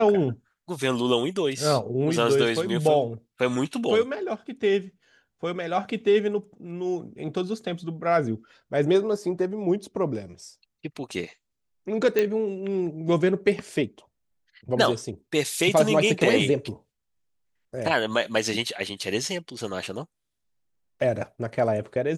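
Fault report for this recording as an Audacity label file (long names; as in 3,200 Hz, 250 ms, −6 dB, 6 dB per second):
12.190000	12.190000	click −10 dBFS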